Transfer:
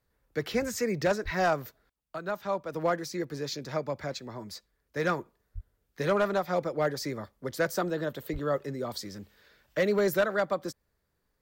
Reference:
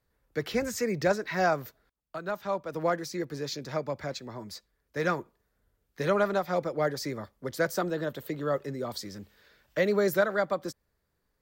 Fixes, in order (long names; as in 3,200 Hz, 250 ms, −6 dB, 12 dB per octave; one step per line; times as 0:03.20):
clipped peaks rebuilt −18.5 dBFS
0:01.24–0:01.36: high-pass filter 140 Hz 24 dB per octave
0:05.54–0:05.66: high-pass filter 140 Hz 24 dB per octave
0:08.32–0:08.44: high-pass filter 140 Hz 24 dB per octave